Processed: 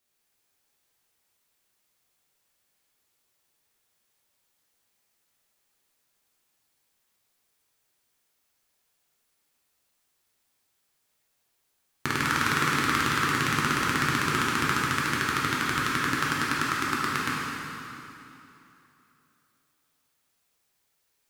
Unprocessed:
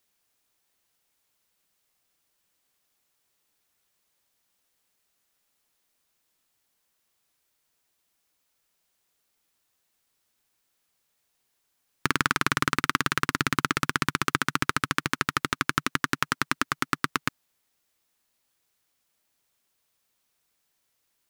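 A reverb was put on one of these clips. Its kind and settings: plate-style reverb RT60 3 s, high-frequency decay 0.85×, DRR -6 dB; gain -5.5 dB

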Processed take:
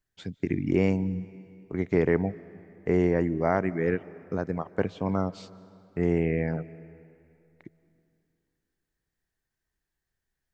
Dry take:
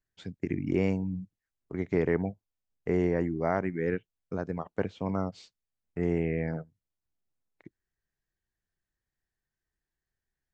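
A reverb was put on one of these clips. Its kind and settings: digital reverb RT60 2.7 s, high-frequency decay 0.85×, pre-delay 0.115 s, DRR 19 dB; gain +3.5 dB

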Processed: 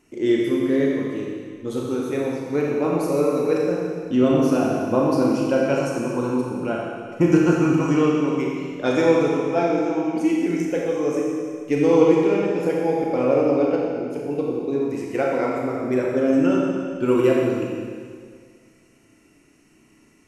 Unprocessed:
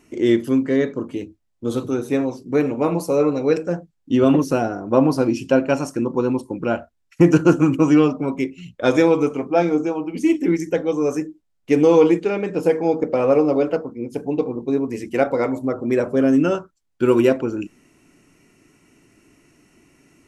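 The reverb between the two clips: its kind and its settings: Schroeder reverb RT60 2 s, combs from 28 ms, DRR -2.5 dB; gain -5.5 dB

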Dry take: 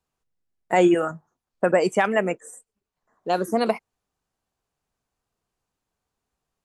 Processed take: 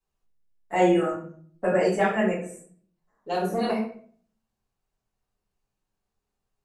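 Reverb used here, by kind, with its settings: shoebox room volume 58 m³, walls mixed, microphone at 2.2 m; gain -13.5 dB

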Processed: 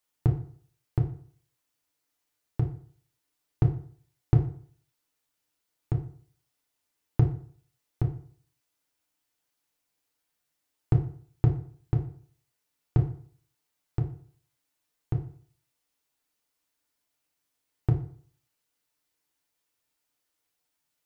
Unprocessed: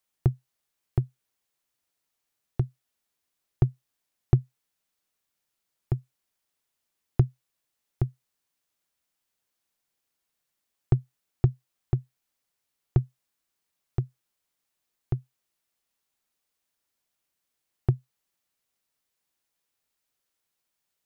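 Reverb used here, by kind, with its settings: FDN reverb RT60 0.51 s, low-frequency decay 1×, high-frequency decay 0.75×, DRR 0.5 dB; gain -1.5 dB

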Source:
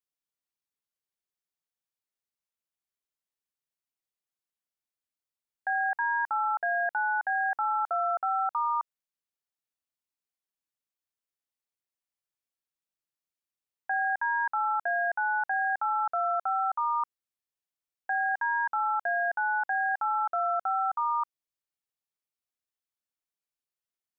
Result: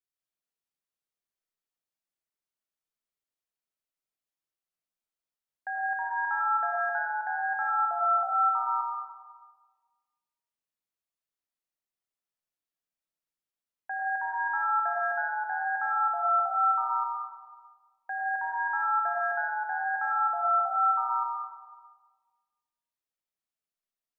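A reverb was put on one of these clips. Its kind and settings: digital reverb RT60 1.5 s, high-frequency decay 0.4×, pre-delay 55 ms, DRR -2.5 dB; gain -5.5 dB

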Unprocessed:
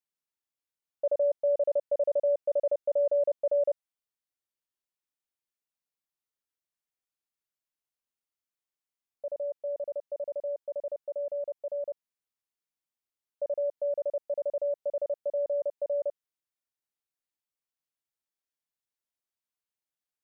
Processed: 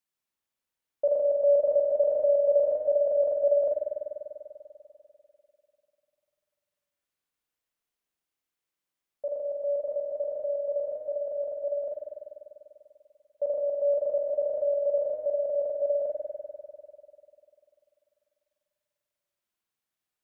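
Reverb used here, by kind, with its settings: spring tank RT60 2.8 s, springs 49 ms, chirp 75 ms, DRR -0.5 dB; gain +3 dB

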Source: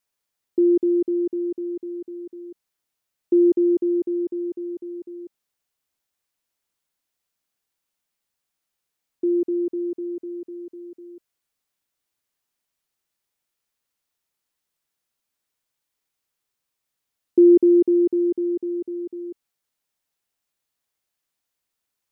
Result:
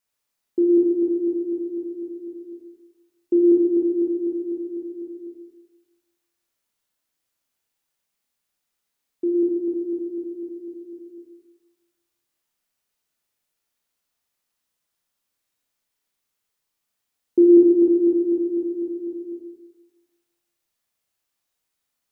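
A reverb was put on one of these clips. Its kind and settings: Schroeder reverb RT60 1.2 s, combs from 26 ms, DRR -1 dB; gain -1.5 dB

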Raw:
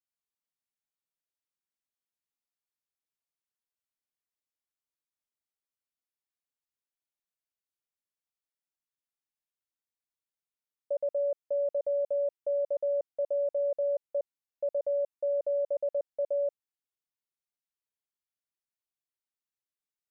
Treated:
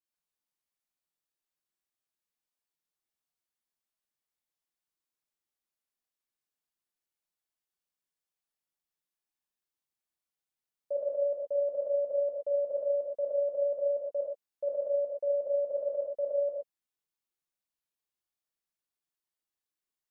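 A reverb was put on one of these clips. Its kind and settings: non-linear reverb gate 0.15 s flat, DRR -3 dB; gain -3.5 dB

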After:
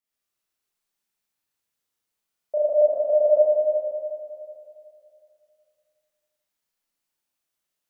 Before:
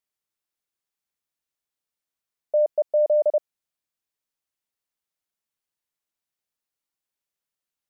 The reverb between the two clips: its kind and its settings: Schroeder reverb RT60 2.6 s, combs from 26 ms, DRR -9.5 dB; gain -4.5 dB

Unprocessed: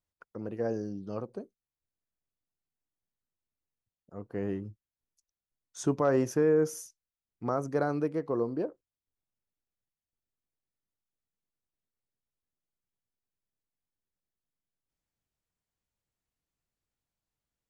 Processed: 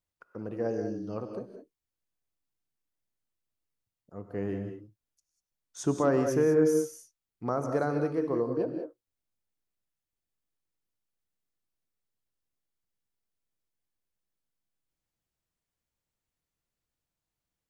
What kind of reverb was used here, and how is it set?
non-linear reverb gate 0.22 s rising, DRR 5.5 dB

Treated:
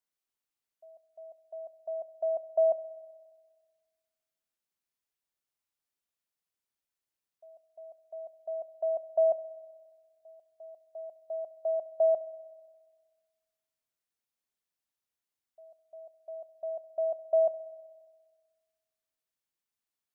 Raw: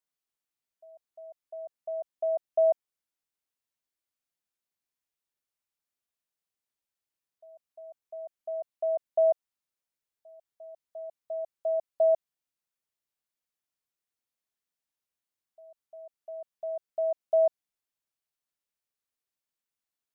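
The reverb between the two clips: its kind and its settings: spring tank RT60 1.6 s, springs 31/59 ms, chirp 70 ms, DRR 14.5 dB; gain -1 dB

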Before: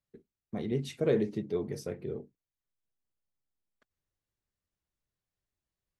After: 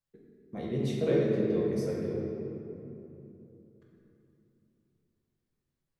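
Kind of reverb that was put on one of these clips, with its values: shoebox room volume 140 m³, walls hard, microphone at 0.72 m; gain -4 dB

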